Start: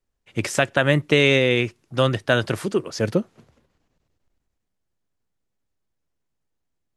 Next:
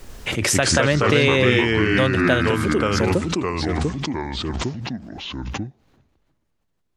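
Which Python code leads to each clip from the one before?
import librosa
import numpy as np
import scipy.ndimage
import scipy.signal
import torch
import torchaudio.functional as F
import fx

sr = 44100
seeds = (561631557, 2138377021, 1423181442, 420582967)

y = fx.echo_pitch(x, sr, ms=97, semitones=-3, count=3, db_per_echo=-3.0)
y = fx.pre_swell(y, sr, db_per_s=27.0)
y = y * librosa.db_to_amplitude(-1.5)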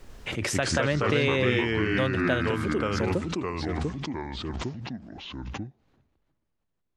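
y = fx.high_shelf(x, sr, hz=6300.0, db=-8.5)
y = y * librosa.db_to_amplitude(-7.0)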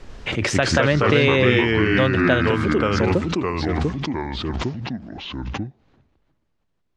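y = scipy.signal.sosfilt(scipy.signal.butter(2, 5800.0, 'lowpass', fs=sr, output='sos'), x)
y = y * librosa.db_to_amplitude(7.5)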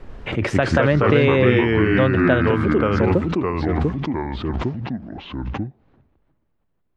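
y = fx.peak_eq(x, sr, hz=6200.0, db=-14.0, octaves=2.1)
y = y * librosa.db_to_amplitude(2.0)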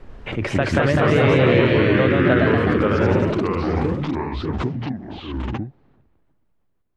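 y = fx.echo_pitch(x, sr, ms=246, semitones=1, count=3, db_per_echo=-3.0)
y = y * librosa.db_to_amplitude(-2.5)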